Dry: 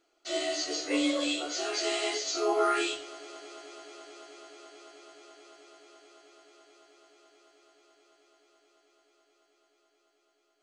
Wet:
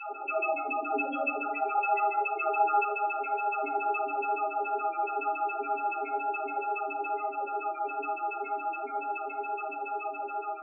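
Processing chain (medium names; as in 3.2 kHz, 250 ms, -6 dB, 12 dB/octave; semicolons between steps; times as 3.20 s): spectral levelling over time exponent 0.2; frequency weighting A; gate with hold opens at -24 dBFS; 1.44–3.54 s: bass shelf 250 Hz -9.5 dB; LFO band-pass saw down 7.1 Hz 250–2400 Hz; small resonant body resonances 820/2600 Hz, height 11 dB, ringing for 60 ms; loudest bins only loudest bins 4; simulated room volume 300 m³, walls furnished, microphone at 1.5 m; trim +2 dB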